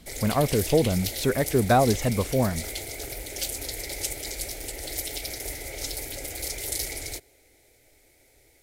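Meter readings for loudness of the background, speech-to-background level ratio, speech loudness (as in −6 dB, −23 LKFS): −32.0 LKFS, 8.0 dB, −24.0 LKFS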